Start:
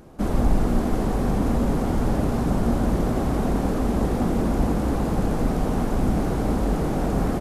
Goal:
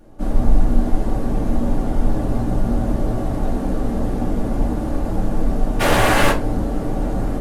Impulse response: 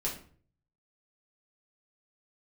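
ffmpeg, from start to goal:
-filter_complex "[0:a]asplit=3[s0][s1][s2];[s0]afade=t=out:st=5.79:d=0.02[s3];[s1]aeval=exprs='0.282*sin(PI/2*10*val(0)/0.282)':c=same,afade=t=in:st=5.79:d=0.02,afade=t=out:st=6.3:d=0.02[s4];[s2]afade=t=in:st=6.3:d=0.02[s5];[s3][s4][s5]amix=inputs=3:normalize=0[s6];[1:a]atrim=start_sample=2205,asetrate=70560,aresample=44100[s7];[s6][s7]afir=irnorm=-1:irlink=0,volume=0.75"

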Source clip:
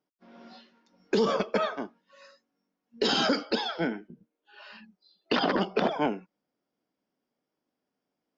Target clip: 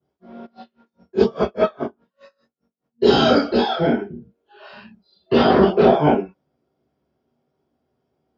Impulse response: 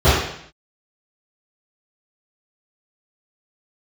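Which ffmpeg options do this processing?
-filter_complex "[1:a]atrim=start_sample=2205,atrim=end_sample=3969[s0];[0:a][s0]afir=irnorm=-1:irlink=0,asplit=3[s1][s2][s3];[s1]afade=t=out:st=0.45:d=0.02[s4];[s2]aeval=exprs='val(0)*pow(10,-29*(0.5-0.5*cos(2*PI*4.9*n/s))/20)':c=same,afade=t=in:st=0.45:d=0.02,afade=t=out:st=3.02:d=0.02[s5];[s3]afade=t=in:st=3.02:d=0.02[s6];[s4][s5][s6]amix=inputs=3:normalize=0,volume=0.158"

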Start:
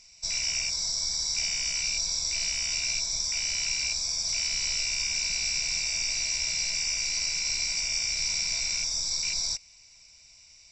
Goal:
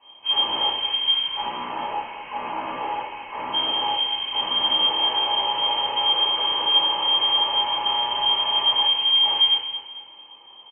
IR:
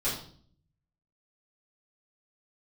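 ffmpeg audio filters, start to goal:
-filter_complex "[0:a]asettb=1/sr,asplit=3[s0][s1][s2];[s0]atrim=end=1.254[s3];[s1]atrim=start=1.25:end=3.51,asetpts=PTS-STARTPTS,afade=t=in:d=0.004:c=qsin,afade=t=out:st=2.256:d=0.004:c=qsin,highpass=310[s4];[s2]atrim=start=3.506[s5];[s3][s4]acrossfade=d=0.004:c1=hsin:c2=qsin[s6];[s6][s5]acrossfade=d=0.004:c1=qsin:c2=hsin,volume=21.1,asoftclip=hard,volume=0.0473,aecho=1:1:224|448|672|896:0.282|0.118|0.0497|0.0209[s7];[1:a]atrim=start_sample=2205,asetrate=39690,aresample=44100[s8];[s7][s8]afir=irnorm=-1:irlink=0,lowpass=f=2700:t=q:w=0.5098,lowpass=f=2700:t=q:w=0.6013,lowpass=f=2700:t=q:w=0.9,lowpass=f=2700:t=q:w=2.563,afreqshift=-3200,volume=1.5"

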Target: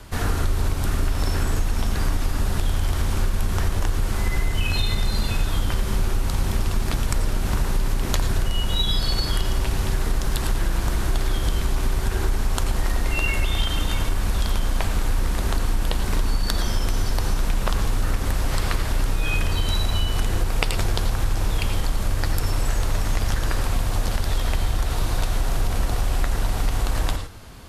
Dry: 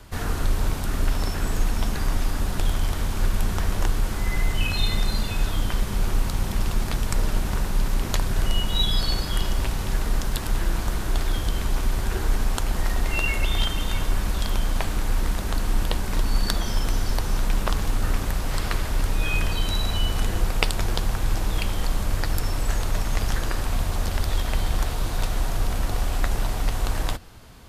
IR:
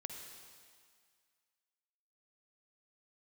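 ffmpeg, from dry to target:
-filter_complex "[1:a]atrim=start_sample=2205,atrim=end_sample=3087,asetrate=25578,aresample=44100[s0];[0:a][s0]afir=irnorm=-1:irlink=0,acompressor=threshold=0.0794:ratio=6,volume=1.88"

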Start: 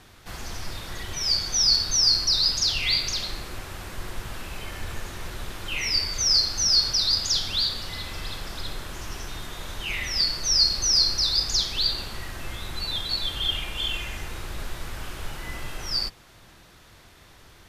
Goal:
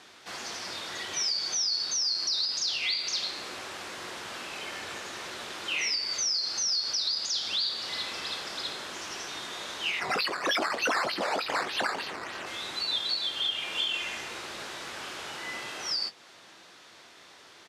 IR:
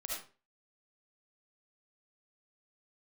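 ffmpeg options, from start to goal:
-filter_complex "[0:a]highshelf=f=4600:g=7.5,alimiter=limit=0.112:level=0:latency=1:release=235,asplit=3[s0][s1][s2];[s0]afade=t=out:st=9.99:d=0.02[s3];[s1]acrusher=samples=10:mix=1:aa=0.000001:lfo=1:lforange=10:lforate=3.3,afade=t=in:st=9.99:d=0.02,afade=t=out:st=12.45:d=0.02[s4];[s2]afade=t=in:st=12.45:d=0.02[s5];[s3][s4][s5]amix=inputs=3:normalize=0,highpass=310,lowpass=5900,asplit=2[s6][s7];[s7]adelay=21,volume=0.282[s8];[s6][s8]amix=inputs=2:normalize=0"

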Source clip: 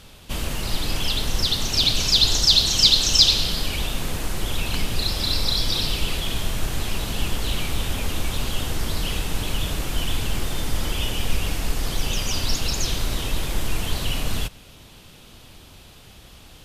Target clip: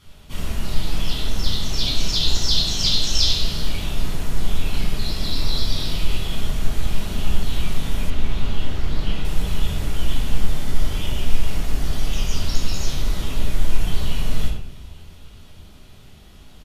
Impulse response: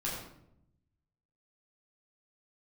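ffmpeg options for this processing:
-filter_complex "[0:a]asplit=5[s0][s1][s2][s3][s4];[s1]adelay=395,afreqshift=-30,volume=0.0841[s5];[s2]adelay=790,afreqshift=-60,volume=0.0462[s6];[s3]adelay=1185,afreqshift=-90,volume=0.0254[s7];[s4]adelay=1580,afreqshift=-120,volume=0.014[s8];[s0][s5][s6][s7][s8]amix=inputs=5:normalize=0[s9];[1:a]atrim=start_sample=2205,asetrate=52920,aresample=44100[s10];[s9][s10]afir=irnorm=-1:irlink=0,asettb=1/sr,asplit=3[s11][s12][s13];[s11]atrim=end=8.104[s14];[s12]atrim=start=8.1:end=9.25,asetpts=PTS-STARTPTS,afade=t=in:d=0.004:c=qsin,afade=t=out:st=1.146:d=0.004:c=qsin,acrossover=split=5000[s15][s16];[s16]acompressor=threshold=0.00398:ratio=4:attack=1:release=60[s17];[s15][s17]amix=inputs=2:normalize=0[s18];[s13]atrim=start=9.246[s19];[s14][s18]acrossfade=d=0.004:c1=hsin:c2=qsin[s20];[s20][s19]acrossfade=d=0.004:c1=qsin:c2=hsin,volume=0.501"

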